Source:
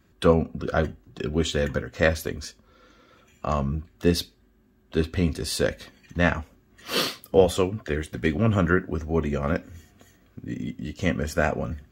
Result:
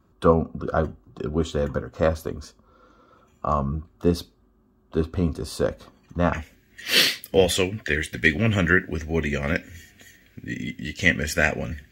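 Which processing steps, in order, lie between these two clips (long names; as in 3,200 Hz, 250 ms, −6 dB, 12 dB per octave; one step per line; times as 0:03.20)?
high shelf with overshoot 1,500 Hz −6.5 dB, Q 3, from 0:06.33 +7 dB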